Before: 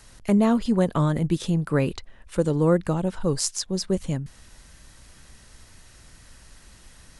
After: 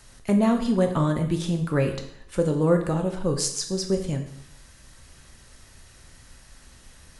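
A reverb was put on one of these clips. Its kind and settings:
dense smooth reverb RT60 0.71 s, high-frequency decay 0.95×, DRR 4 dB
level −1.5 dB

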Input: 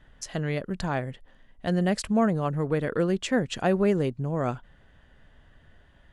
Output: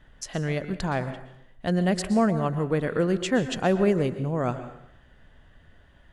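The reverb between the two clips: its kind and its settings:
dense smooth reverb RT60 0.73 s, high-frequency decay 0.8×, pre-delay 105 ms, DRR 11 dB
level +1 dB

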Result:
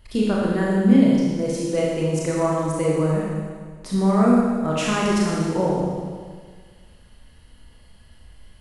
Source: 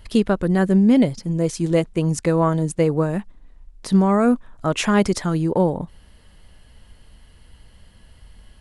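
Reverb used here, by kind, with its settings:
four-comb reverb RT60 1.7 s, combs from 26 ms, DRR −5 dB
level −7 dB

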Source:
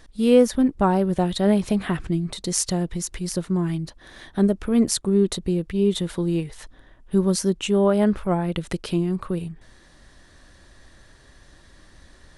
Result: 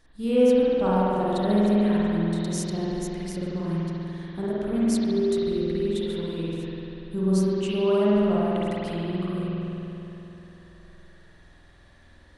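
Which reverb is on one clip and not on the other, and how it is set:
spring reverb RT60 3.2 s, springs 48 ms, chirp 25 ms, DRR −8.5 dB
level −11.5 dB

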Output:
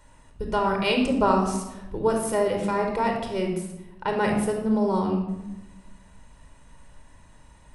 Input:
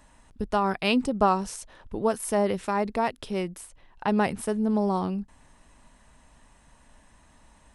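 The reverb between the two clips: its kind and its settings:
rectangular room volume 3,800 cubic metres, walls furnished, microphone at 4.7 metres
level −2 dB

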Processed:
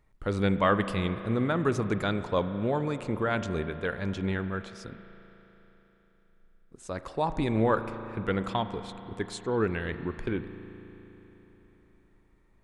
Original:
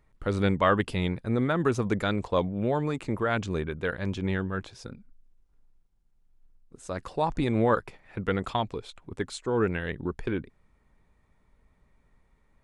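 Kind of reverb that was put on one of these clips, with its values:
spring reverb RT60 3.9 s, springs 36 ms, chirp 65 ms, DRR 10 dB
level −1.5 dB

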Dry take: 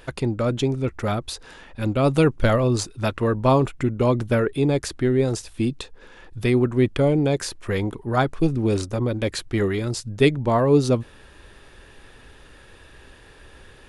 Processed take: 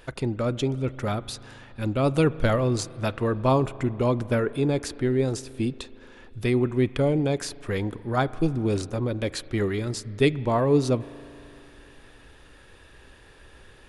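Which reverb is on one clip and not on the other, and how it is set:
spring reverb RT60 3 s, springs 38 ms, chirp 45 ms, DRR 17.5 dB
level −3.5 dB

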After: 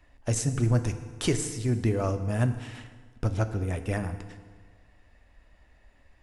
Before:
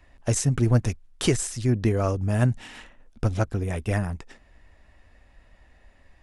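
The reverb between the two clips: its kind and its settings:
feedback delay network reverb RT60 1.6 s, low-frequency decay 1×, high-frequency decay 0.75×, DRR 8.5 dB
level −4 dB

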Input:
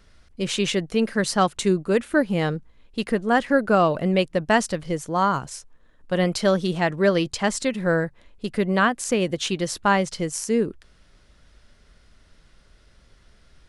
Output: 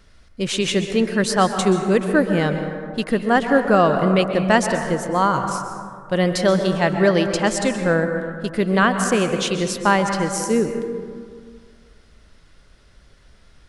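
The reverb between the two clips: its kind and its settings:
dense smooth reverb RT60 2 s, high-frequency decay 0.35×, pre-delay 115 ms, DRR 6 dB
level +2.5 dB

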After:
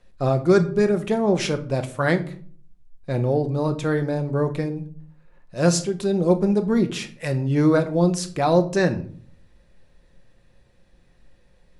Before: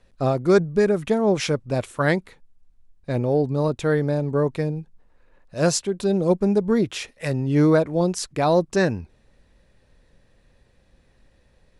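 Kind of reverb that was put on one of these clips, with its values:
rectangular room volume 440 cubic metres, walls furnished, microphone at 0.9 metres
level −1 dB

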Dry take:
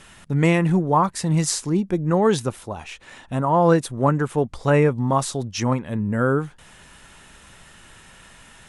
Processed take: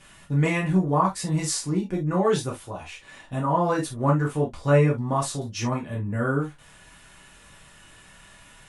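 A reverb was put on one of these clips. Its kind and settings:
reverb whose tail is shaped and stops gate 90 ms falling, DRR −4 dB
level −8.5 dB

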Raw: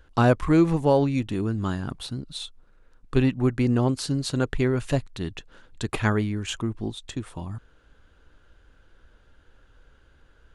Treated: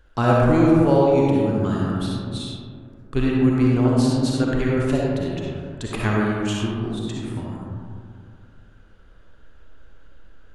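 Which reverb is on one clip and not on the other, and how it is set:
comb and all-pass reverb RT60 2.3 s, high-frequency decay 0.3×, pre-delay 20 ms, DRR −4 dB
level −2 dB

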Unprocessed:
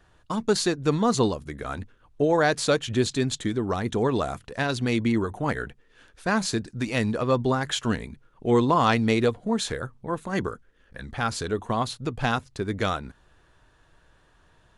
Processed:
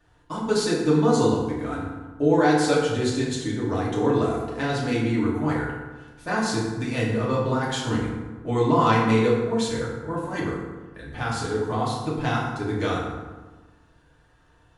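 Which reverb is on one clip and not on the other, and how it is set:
feedback delay network reverb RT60 1.3 s, low-frequency decay 1.2×, high-frequency decay 0.55×, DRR −6.5 dB
level −7 dB

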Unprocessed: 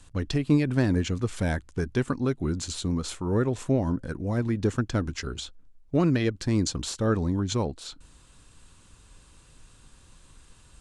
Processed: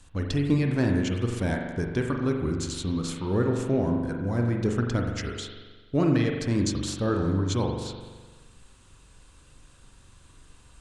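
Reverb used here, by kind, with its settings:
spring reverb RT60 1.4 s, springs 42 ms, chirp 50 ms, DRR 2 dB
level −1.5 dB

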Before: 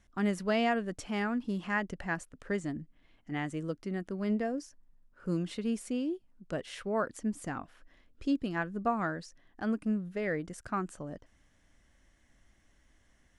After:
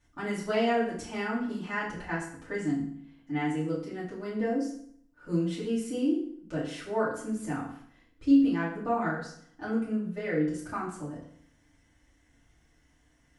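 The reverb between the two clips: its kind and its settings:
feedback delay network reverb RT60 0.62 s, low-frequency decay 1.2×, high-frequency decay 0.85×, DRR −9.5 dB
level −8 dB

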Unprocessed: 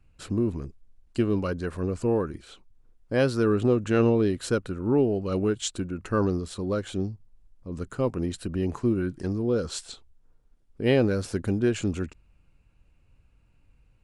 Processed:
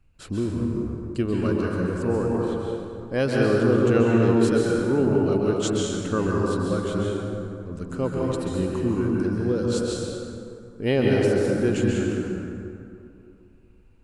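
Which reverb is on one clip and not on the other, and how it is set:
dense smooth reverb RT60 2.6 s, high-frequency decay 0.5×, pre-delay 120 ms, DRR −3 dB
level −1 dB

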